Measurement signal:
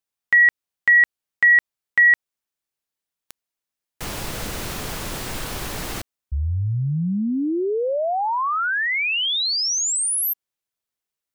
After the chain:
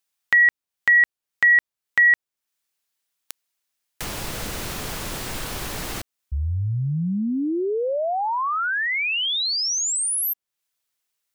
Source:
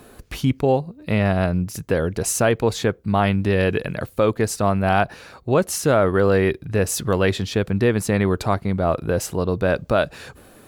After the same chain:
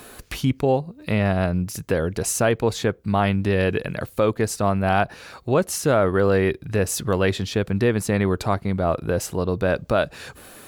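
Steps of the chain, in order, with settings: tape noise reduction on one side only encoder only; trim -1.5 dB

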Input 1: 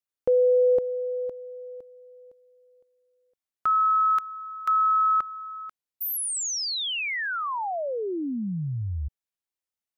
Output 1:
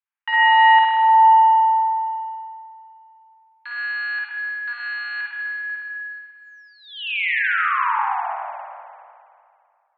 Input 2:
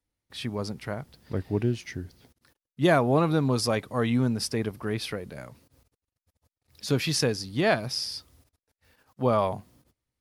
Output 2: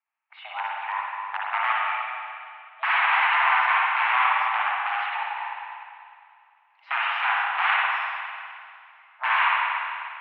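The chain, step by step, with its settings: integer overflow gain 19.5 dB; spring tank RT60 2.3 s, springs 50/60 ms, chirp 70 ms, DRR -5 dB; mistuned SSB +390 Hz 450–2300 Hz; trim +3 dB

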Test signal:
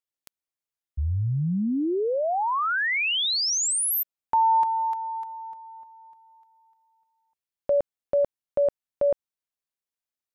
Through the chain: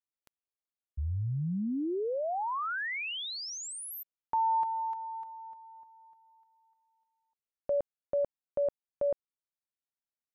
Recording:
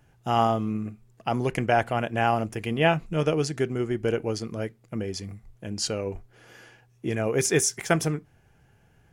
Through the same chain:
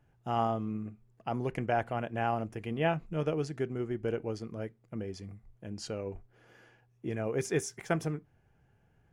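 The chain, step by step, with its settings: treble shelf 2.9 kHz -10 dB; trim -7 dB

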